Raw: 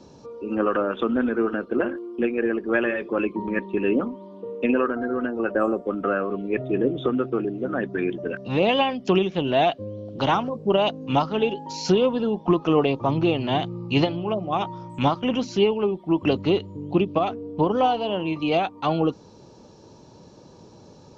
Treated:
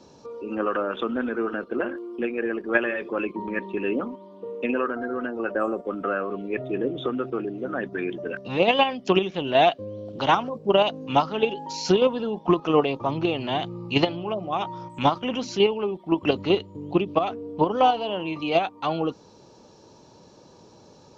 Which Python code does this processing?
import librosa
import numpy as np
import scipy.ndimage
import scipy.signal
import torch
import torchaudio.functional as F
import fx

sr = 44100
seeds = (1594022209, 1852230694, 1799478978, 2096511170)

p1 = fx.low_shelf(x, sr, hz=330.0, db=-7.0)
p2 = fx.level_steps(p1, sr, step_db=21)
p3 = p1 + F.gain(torch.from_numpy(p2), 0.5).numpy()
y = F.gain(torch.from_numpy(p3), -2.0).numpy()